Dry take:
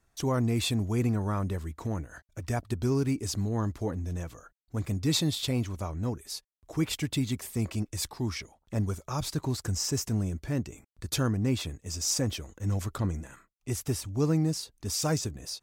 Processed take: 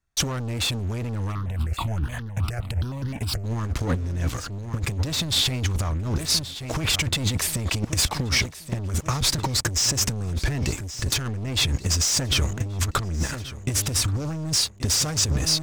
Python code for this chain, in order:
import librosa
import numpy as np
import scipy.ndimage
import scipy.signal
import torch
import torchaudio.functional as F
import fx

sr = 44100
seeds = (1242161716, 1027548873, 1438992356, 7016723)

y = fx.peak_eq(x, sr, hz=480.0, db=-8.0, octaves=2.6)
y = fx.leveller(y, sr, passes=5)
y = fx.high_shelf(y, sr, hz=9500.0, db=-10.5)
y = fx.echo_feedback(y, sr, ms=1129, feedback_pct=35, wet_db=-17.0)
y = fx.over_compress(y, sr, threshold_db=-23.0, ratio=-0.5)
y = fx.phaser_held(y, sr, hz=9.6, low_hz=980.0, high_hz=2400.0, at=(1.31, 3.43), fade=0.02)